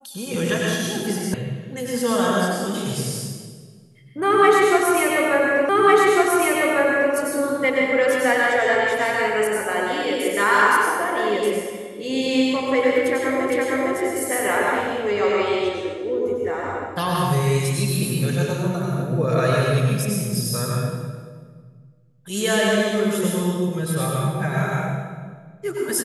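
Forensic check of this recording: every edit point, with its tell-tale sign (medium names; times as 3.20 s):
1.34 s: sound stops dead
5.69 s: repeat of the last 1.45 s
13.50 s: repeat of the last 0.46 s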